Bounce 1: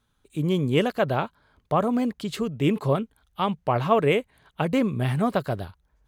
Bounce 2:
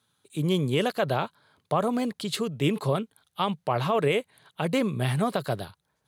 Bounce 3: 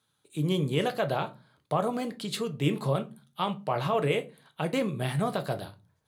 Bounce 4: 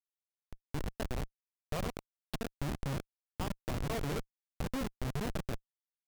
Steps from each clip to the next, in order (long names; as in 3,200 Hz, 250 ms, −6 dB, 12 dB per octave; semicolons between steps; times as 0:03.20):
graphic EQ with 15 bands 250 Hz −4 dB, 4,000 Hz +6 dB, 10,000 Hz +8 dB; brickwall limiter −15 dBFS, peak gain reduction 8 dB; high-pass filter 110 Hz 24 dB per octave
rectangular room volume 120 cubic metres, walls furnished, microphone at 0.57 metres; level −3.5 dB
fade in at the beginning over 1.44 s; comparator with hysteresis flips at −25 dBFS; power curve on the samples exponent 1.4; level −1 dB